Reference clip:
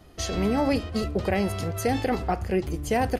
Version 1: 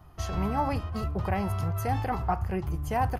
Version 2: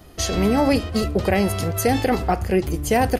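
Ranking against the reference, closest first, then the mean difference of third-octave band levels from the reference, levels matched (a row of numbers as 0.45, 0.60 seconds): 2, 1; 1.0, 4.5 decibels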